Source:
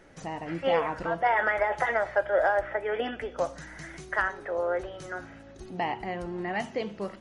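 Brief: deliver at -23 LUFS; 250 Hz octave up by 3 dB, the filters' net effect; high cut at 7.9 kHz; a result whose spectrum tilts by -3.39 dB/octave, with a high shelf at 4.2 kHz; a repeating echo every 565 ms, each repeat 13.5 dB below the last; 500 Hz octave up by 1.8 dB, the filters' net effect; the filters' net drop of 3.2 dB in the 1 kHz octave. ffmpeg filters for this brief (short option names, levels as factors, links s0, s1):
-af "lowpass=7900,equalizer=f=250:t=o:g=3.5,equalizer=f=500:t=o:g=3.5,equalizer=f=1000:t=o:g=-7,highshelf=f=4200:g=6.5,aecho=1:1:565|1130:0.211|0.0444,volume=1.88"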